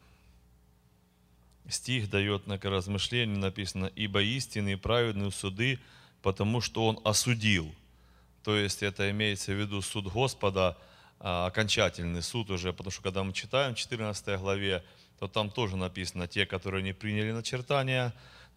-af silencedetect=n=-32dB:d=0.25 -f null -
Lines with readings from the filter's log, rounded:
silence_start: 0.00
silence_end: 1.72 | silence_duration: 1.72
silence_start: 5.75
silence_end: 6.24 | silence_duration: 0.49
silence_start: 7.64
silence_end: 8.47 | silence_duration: 0.83
silence_start: 10.71
silence_end: 11.25 | silence_duration: 0.54
silence_start: 14.77
silence_end: 15.23 | silence_duration: 0.45
silence_start: 18.10
silence_end: 18.57 | silence_duration: 0.47